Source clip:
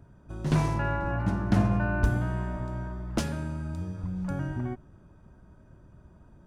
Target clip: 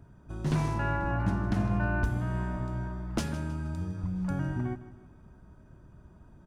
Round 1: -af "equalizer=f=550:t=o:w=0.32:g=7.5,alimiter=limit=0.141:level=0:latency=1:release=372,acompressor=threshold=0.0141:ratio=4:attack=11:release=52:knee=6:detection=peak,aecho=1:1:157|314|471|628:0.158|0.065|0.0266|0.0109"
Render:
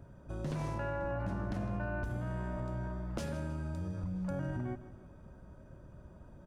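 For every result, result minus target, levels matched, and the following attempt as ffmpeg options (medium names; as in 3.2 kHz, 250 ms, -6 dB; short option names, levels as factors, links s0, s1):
compression: peak gain reduction +12 dB; 500 Hz band +5.5 dB
-af "equalizer=f=550:t=o:w=0.32:g=7.5,alimiter=limit=0.141:level=0:latency=1:release=372,aecho=1:1:157|314|471|628:0.158|0.065|0.0266|0.0109"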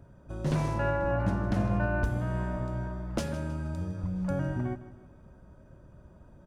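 500 Hz band +5.5 dB
-af "equalizer=f=550:t=o:w=0.32:g=-3.5,alimiter=limit=0.141:level=0:latency=1:release=372,aecho=1:1:157|314|471|628:0.158|0.065|0.0266|0.0109"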